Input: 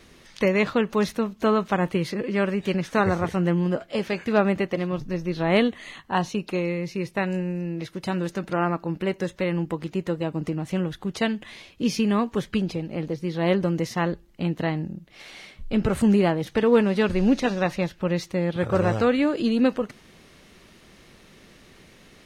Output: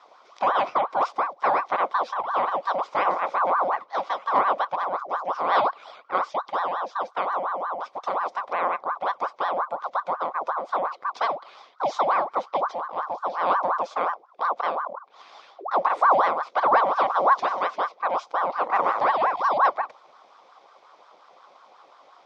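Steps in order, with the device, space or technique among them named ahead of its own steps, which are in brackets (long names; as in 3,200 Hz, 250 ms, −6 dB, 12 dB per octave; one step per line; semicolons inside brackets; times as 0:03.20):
voice changer toy (ring modulator whose carrier an LFO sweeps 870 Hz, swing 60%, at 5.6 Hz; loudspeaker in its box 490–5,000 Hz, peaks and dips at 540 Hz +5 dB, 760 Hz +5 dB, 1,100 Hz +8 dB, 1,700 Hz −9 dB, 2,800 Hz −9 dB, 4,300 Hz −5 dB)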